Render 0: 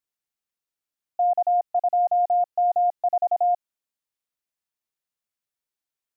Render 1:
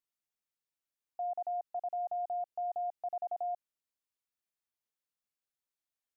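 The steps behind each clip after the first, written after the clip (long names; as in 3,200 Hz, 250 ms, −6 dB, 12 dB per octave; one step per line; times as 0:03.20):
brickwall limiter −26 dBFS, peak gain reduction 9.5 dB
level −5.5 dB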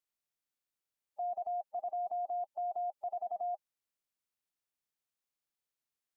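spectral magnitudes quantised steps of 30 dB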